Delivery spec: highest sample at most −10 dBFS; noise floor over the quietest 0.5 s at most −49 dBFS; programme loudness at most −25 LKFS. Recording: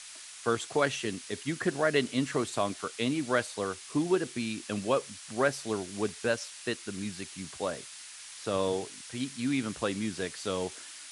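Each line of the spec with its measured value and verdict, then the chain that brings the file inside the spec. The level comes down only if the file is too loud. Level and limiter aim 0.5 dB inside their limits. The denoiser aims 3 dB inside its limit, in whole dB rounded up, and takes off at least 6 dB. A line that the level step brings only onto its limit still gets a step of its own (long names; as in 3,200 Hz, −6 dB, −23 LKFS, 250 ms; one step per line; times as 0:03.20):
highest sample −12.5 dBFS: in spec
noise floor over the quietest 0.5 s −47 dBFS: out of spec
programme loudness −32.0 LKFS: in spec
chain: broadband denoise 6 dB, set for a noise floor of −47 dBFS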